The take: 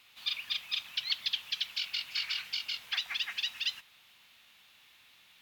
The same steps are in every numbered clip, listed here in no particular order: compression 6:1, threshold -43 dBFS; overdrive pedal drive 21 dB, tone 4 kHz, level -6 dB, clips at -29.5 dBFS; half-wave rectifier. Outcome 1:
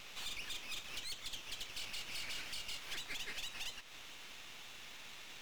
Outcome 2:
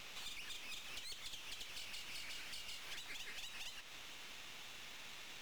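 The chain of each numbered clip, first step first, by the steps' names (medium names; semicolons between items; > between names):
compression > overdrive pedal > half-wave rectifier; overdrive pedal > compression > half-wave rectifier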